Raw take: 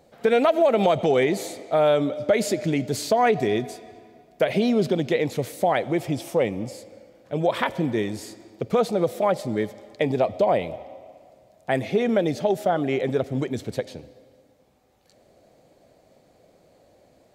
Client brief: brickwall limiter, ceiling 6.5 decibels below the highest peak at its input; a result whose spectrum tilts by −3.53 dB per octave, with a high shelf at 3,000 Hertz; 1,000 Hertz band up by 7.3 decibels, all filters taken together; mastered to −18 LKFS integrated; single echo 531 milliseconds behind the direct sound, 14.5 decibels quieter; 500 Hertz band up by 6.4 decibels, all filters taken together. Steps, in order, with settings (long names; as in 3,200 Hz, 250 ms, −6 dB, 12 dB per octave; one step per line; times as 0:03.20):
parametric band 500 Hz +5.5 dB
parametric band 1,000 Hz +8.5 dB
high-shelf EQ 3,000 Hz −4.5 dB
brickwall limiter −7.5 dBFS
single-tap delay 531 ms −14.5 dB
level +1.5 dB